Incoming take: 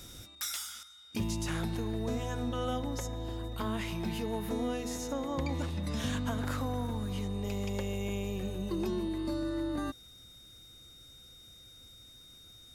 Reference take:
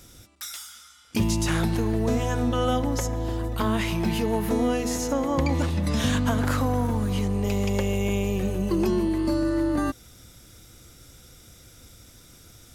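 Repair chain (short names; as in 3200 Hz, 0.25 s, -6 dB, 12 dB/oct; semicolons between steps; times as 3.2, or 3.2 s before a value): notch 3700 Hz, Q 30; gain correction +10 dB, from 0.83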